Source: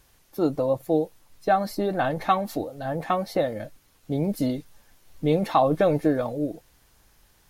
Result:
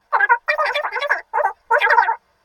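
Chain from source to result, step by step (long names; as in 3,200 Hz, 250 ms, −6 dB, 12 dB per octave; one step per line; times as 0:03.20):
thirty-one-band graphic EQ 315 Hz +12 dB, 630 Hz +4 dB, 4,000 Hz +7 dB
convolution reverb RT60 0.15 s, pre-delay 26 ms, DRR −8.5 dB
flanger 0.48 Hz, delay 3.4 ms, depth 3 ms, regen −61%
high-shelf EQ 3,100 Hz −8.5 dB
change of speed 3.07×
level −14.5 dB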